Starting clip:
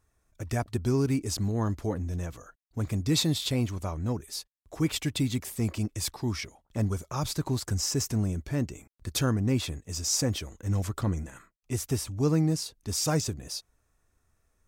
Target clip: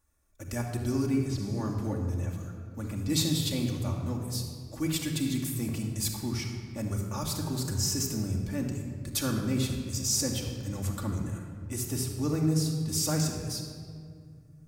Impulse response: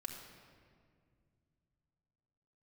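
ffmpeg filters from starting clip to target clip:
-filter_complex "[0:a]highshelf=f=7100:g=10[s0];[1:a]atrim=start_sample=2205[s1];[s0][s1]afir=irnorm=-1:irlink=0,asettb=1/sr,asplit=3[s2][s3][s4];[s2]atrim=end=1.064[s5];[s3]atrim=start=1.06:end=3.1,asetpts=PTS-STARTPTS,afade=t=in:d=0.004:c=qsin,afade=t=out:st=2.036:d=0.004:c=qsin,acrossover=split=4200[s6][s7];[s7]acompressor=threshold=0.00316:ratio=4:attack=1:release=60[s8];[s6][s8]amix=inputs=2:normalize=0[s9];[s4]atrim=start=3.096[s10];[s5][s9]acrossfade=d=0.004:c1=hsin:c2=qsin[s11];[s11][s10]acrossfade=d=0.004:c1=qsin:c2=hsin,volume=0.891"

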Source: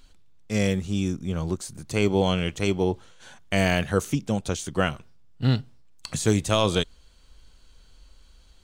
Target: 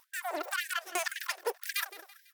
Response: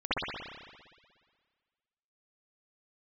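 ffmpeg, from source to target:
-af "acompressor=threshold=0.0251:ratio=2,aeval=exprs='0.178*(cos(1*acos(clip(val(0)/0.178,-1,1)))-cos(1*PI/2))+0.0316*(cos(6*acos(clip(val(0)/0.178,-1,1)))-cos(6*PI/2))':c=same,asetrate=163170,aresample=44100,aecho=1:1:166|332|498|664:0.15|0.0673|0.0303|0.0136,afftfilt=real='re*gte(b*sr/1024,290*pow(1600/290,0.5+0.5*sin(2*PI*1.9*pts/sr)))':imag='im*gte(b*sr/1024,290*pow(1600/290,0.5+0.5*sin(2*PI*1.9*pts/sr)))':win_size=1024:overlap=0.75"

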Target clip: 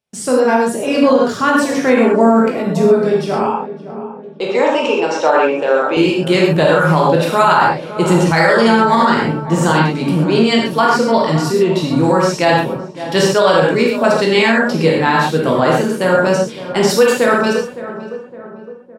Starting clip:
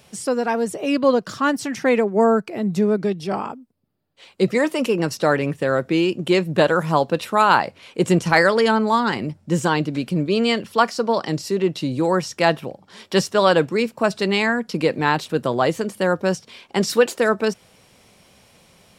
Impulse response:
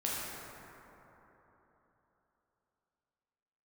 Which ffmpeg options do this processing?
-filter_complex "[0:a]asettb=1/sr,asplit=3[s0][s1][s2];[s0]atrim=end=3.434[s3];[s1]atrim=start=3.43:end=5.97,asetpts=PTS-STARTPTS,afade=t=in:d=0.004:c=qsin,afade=t=out:st=2.536:d=0.004:c=qsin,highpass=f=310:w=0.5412,highpass=f=310:w=1.3066,equalizer=f=360:t=q:w=4:g=-5,equalizer=f=870:t=q:w=4:g=8,equalizer=f=1900:t=q:w=4:g=-8,equalizer=f=2700:t=q:w=4:g=5,equalizer=f=4600:t=q:w=4:g=-8,lowpass=f=6300:w=0.5412,lowpass=f=6300:w=1.3066[s4];[s2]atrim=start=5.966[s5];[s3][s4]acrossfade=d=0.004:c1=hsin:c2=qsin[s6];[s6][s5]acrossfade=d=0.004:c1=qsin:c2=hsin,agate=range=0.0178:threshold=0.00891:ratio=16:detection=peak,asplit=2[s7][s8];[s8]adelay=562,lowpass=f=1300:p=1,volume=0.211,asplit=2[s9][s10];[s10]adelay=562,lowpass=f=1300:p=1,volume=0.54,asplit=2[s11][s12];[s12]adelay=562,lowpass=f=1300:p=1,volume=0.54,asplit=2[s13][s14];[s14]adelay=562,lowpass=f=1300:p=1,volume=0.54,asplit=2[s15][s16];[s16]adelay=562,lowpass=f=1300:p=1,volume=0.54[s17];[s7][s9][s11][s13][s15][s17]amix=inputs=6:normalize=0[s18];[1:a]atrim=start_sample=2205,afade=t=out:st=0.19:d=0.01,atrim=end_sample=8820[s19];[s18][s19]afir=irnorm=-1:irlink=0,alimiter=level_in=1.88:limit=0.891:release=50:level=0:latency=1,volume=0.891"

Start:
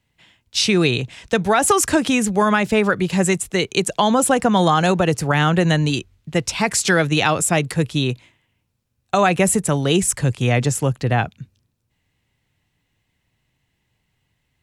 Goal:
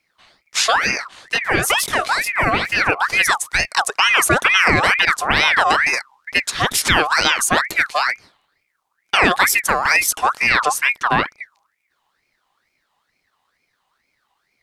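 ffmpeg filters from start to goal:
-filter_complex "[0:a]asplit=3[s0][s1][s2];[s0]afade=t=out:st=0.75:d=0.02[s3];[s1]flanger=delay=18.5:depth=5.1:speed=2.8,afade=t=in:st=0.75:d=0.02,afade=t=out:st=2.85:d=0.02[s4];[s2]afade=t=in:st=2.85:d=0.02[s5];[s3][s4][s5]amix=inputs=3:normalize=0,aeval=exprs='val(0)*sin(2*PI*1600*n/s+1600*0.45/2.2*sin(2*PI*2.2*n/s))':c=same,volume=1.58"

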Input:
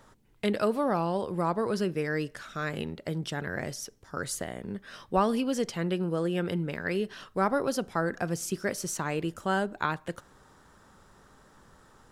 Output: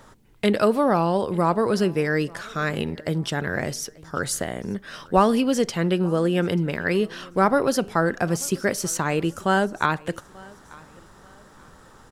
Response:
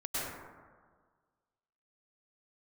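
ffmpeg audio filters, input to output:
-af "aecho=1:1:887|1774:0.0631|0.0215,volume=2.37"

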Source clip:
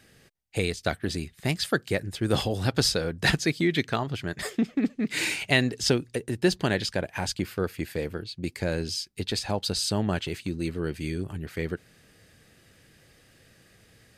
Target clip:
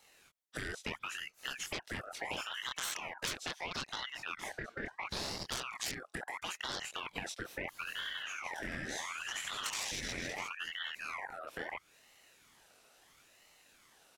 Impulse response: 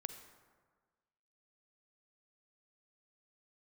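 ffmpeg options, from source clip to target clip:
-filter_complex "[0:a]asplit=2[s0][s1];[s1]adelay=23,volume=0.708[s2];[s0][s2]amix=inputs=2:normalize=0,afwtdn=0.0447,aeval=exprs='(tanh(10*val(0)+0.45)-tanh(0.45))/10':c=same,equalizer=f=2200:w=1.8:g=-6.5,asettb=1/sr,asplit=3[s3][s4][s5];[s3]atrim=end=7.704[s6];[s4]atrim=start=7.7:end=10.49,asetpts=PTS-STARTPTS,afade=t=in:d=0.004:c=qsin,afade=t=out:st=2.786:d=0.004:c=qsin,aecho=1:1:70|161|279.3|433.1|633:0.631|0.398|0.251|0.158|0.1,atrim=end_sample=123039[s7];[s5]atrim=start=10.486[s8];[s6][s7]acrossfade=d=0.004:c1=hsin:c2=qsin[s9];[s9][s8]acrossfade=d=0.004:c1=qsin:c2=hsin,afftfilt=real='re*lt(hypot(re,im),0.0562)':imag='im*lt(hypot(re,im),0.0562)':win_size=1024:overlap=0.75,adynamicequalizer=threshold=0.00126:dfrequency=590:dqfactor=2.9:tfrequency=590:tqfactor=2.9:attack=5:release=100:ratio=0.375:range=1.5:mode=boostabove:tftype=bell,acompressor=threshold=0.00251:ratio=4,highpass=320,aeval=exprs='val(0)*sin(2*PI*1700*n/s+1700*0.45/0.74*sin(2*PI*0.74*n/s))':c=same,volume=6.68"

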